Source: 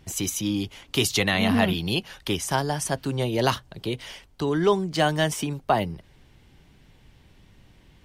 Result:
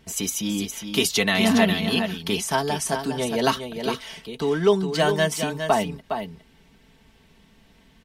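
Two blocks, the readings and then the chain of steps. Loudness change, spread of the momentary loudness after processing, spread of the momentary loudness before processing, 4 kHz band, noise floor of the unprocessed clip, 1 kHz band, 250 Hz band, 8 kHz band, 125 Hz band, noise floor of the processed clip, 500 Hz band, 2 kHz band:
+2.0 dB, 10 LU, 11 LU, +2.0 dB, −57 dBFS, +1.0 dB, +2.0 dB, +2.5 dB, −2.0 dB, −57 dBFS, +3.0 dB, +2.5 dB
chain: low-shelf EQ 75 Hz −8.5 dB
comb filter 4.5 ms, depth 66%
single-tap delay 411 ms −7.5 dB

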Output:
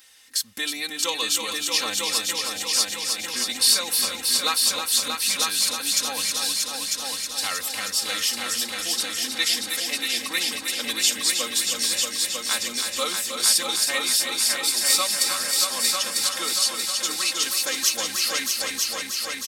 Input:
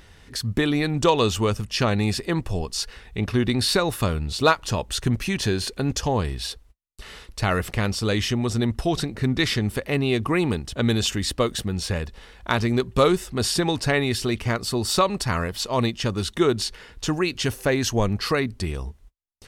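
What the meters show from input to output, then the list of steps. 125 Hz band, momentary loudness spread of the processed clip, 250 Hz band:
below −25 dB, 7 LU, −15.5 dB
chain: first difference
comb filter 3.8 ms, depth 99%
echo machine with several playback heads 316 ms, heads all three, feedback 60%, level −7 dB
level +5.5 dB

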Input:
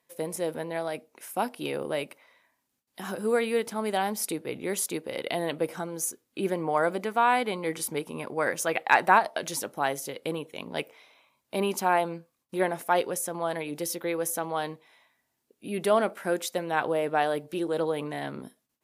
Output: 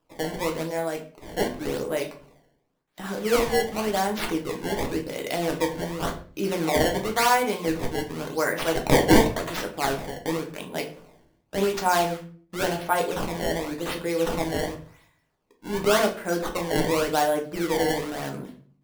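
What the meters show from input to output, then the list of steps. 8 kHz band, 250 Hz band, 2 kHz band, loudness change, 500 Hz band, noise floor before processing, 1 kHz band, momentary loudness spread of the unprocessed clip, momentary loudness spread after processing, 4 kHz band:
+0.5 dB, +6.0 dB, +1.5 dB, +3.0 dB, +3.5 dB, −79 dBFS, +0.5 dB, 11 LU, 12 LU, +7.0 dB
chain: sample-and-hold swept by an LFO 20×, swing 160% 0.91 Hz
rectangular room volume 38 cubic metres, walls mixed, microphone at 0.49 metres

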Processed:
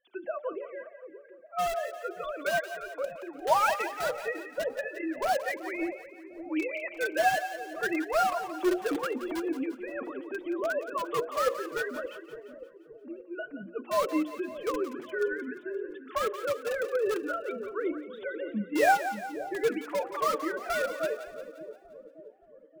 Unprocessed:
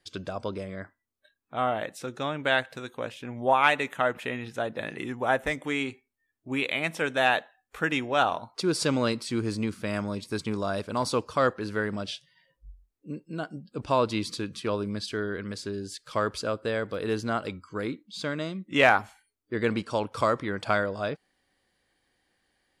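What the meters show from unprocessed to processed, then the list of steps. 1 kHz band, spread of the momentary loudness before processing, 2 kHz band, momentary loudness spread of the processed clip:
−1.5 dB, 12 LU, −4.0 dB, 17 LU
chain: three sine waves on the formant tracks
low-pass filter 2,300 Hz 12 dB per octave
mains-hum notches 60/120/180/240/300/360/420/480/540/600 Hz
in parallel at −8.5 dB: wrap-around overflow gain 22 dB
on the sum: flanger 1.3 Hz, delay 3.5 ms, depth 3.5 ms, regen +21%
on a send: echo with a time of its own for lows and highs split 600 Hz, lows 575 ms, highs 174 ms, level −10.5 dB

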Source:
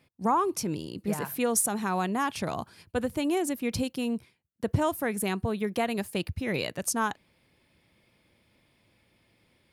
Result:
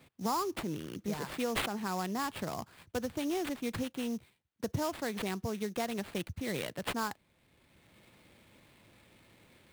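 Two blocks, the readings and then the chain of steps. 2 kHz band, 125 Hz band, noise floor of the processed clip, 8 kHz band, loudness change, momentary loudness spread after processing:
−5.5 dB, −7.0 dB, −72 dBFS, −12.0 dB, −6.5 dB, 6 LU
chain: sample-rate reduction 6,100 Hz, jitter 20%
multiband upward and downward compressor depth 40%
level −6.5 dB

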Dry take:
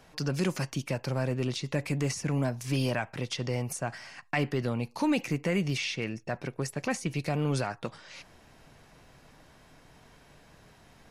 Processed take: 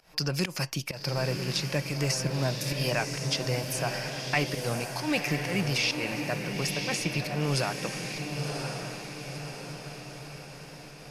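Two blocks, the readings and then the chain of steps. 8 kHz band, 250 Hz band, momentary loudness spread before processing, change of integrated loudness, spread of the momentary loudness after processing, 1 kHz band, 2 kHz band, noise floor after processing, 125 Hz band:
+6.0 dB, −1.5 dB, 7 LU, +1.5 dB, 12 LU, +2.5 dB, +5.0 dB, −46 dBFS, +1.0 dB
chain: thirty-one-band graphic EQ 100 Hz −11 dB, 250 Hz −9 dB, 400 Hz −3 dB, 2,500 Hz +4 dB, 5,000 Hz +9 dB, 12,500 Hz +11 dB
fake sidechain pumping 132 BPM, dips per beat 1, −18 dB, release 193 ms
on a send: feedback delay with all-pass diffusion 1,024 ms, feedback 55%, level −4.5 dB
on the sum: level +2 dB

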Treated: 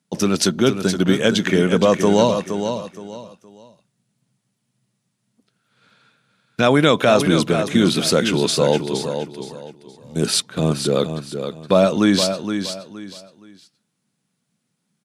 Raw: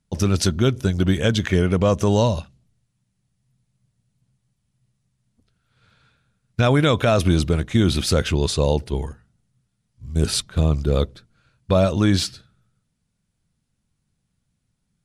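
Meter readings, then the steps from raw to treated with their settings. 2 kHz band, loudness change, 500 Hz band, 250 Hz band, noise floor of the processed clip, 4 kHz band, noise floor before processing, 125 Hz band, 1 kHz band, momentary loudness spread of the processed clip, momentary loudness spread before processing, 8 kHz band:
+4.5 dB, +2.0 dB, +4.5 dB, +3.5 dB, −74 dBFS, +4.5 dB, −74 dBFS, −4.0 dB, +4.5 dB, 18 LU, 9 LU, +4.5 dB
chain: high-pass filter 170 Hz 24 dB per octave
repeating echo 469 ms, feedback 28%, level −8 dB
level +4 dB

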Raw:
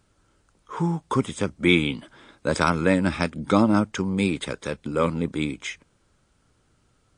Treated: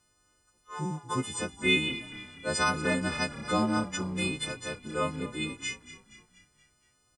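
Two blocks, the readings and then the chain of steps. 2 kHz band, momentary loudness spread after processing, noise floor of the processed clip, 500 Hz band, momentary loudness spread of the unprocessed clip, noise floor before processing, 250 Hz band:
−2.5 dB, 12 LU, −70 dBFS, −8.0 dB, 12 LU, −66 dBFS, −9.5 dB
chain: every partial snapped to a pitch grid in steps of 3 semitones
echo with shifted repeats 237 ms, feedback 52%, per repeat −32 Hz, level −15 dB
level −8.5 dB

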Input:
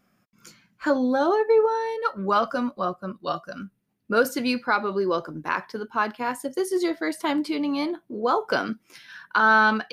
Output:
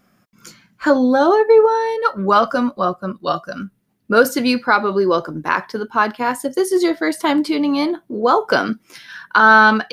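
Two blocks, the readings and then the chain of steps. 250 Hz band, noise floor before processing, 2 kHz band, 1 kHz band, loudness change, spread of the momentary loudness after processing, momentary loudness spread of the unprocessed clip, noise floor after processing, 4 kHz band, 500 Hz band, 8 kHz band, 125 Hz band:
+8.0 dB, −69 dBFS, +8.0 dB, +8.0 dB, +8.0 dB, 11 LU, 12 LU, −61 dBFS, +7.5 dB, +8.0 dB, +8.0 dB, +8.0 dB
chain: parametric band 2,500 Hz −2.5 dB 0.31 octaves
level +8 dB

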